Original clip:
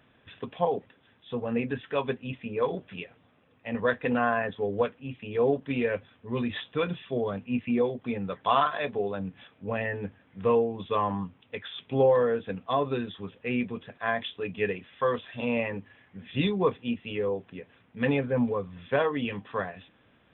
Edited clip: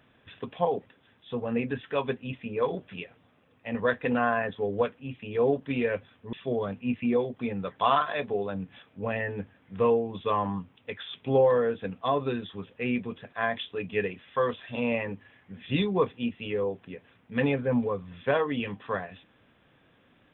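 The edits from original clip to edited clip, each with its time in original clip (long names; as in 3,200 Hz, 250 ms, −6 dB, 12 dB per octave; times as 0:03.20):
0:06.33–0:06.98: remove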